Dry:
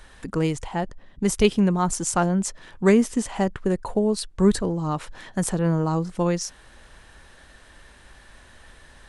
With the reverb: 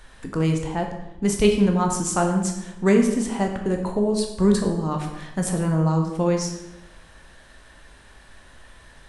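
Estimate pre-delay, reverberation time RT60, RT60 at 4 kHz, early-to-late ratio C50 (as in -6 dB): 11 ms, 1.0 s, 0.70 s, 6.0 dB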